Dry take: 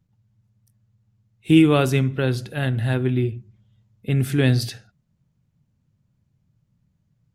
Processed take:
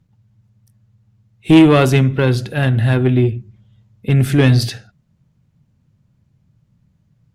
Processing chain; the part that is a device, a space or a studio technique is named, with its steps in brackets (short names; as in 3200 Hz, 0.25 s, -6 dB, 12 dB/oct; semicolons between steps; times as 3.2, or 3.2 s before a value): tube preamp driven hard (tube stage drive 11 dB, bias 0.25; high shelf 6900 Hz -6 dB); gain +9 dB